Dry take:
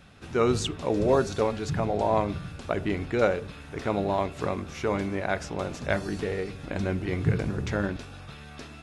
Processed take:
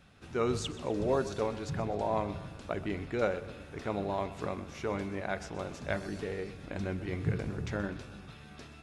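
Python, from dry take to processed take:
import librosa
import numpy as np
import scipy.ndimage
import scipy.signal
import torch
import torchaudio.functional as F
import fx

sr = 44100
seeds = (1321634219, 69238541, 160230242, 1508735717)

y = fx.echo_split(x, sr, split_hz=330.0, low_ms=338, high_ms=126, feedback_pct=52, wet_db=-15.5)
y = F.gain(torch.from_numpy(y), -7.0).numpy()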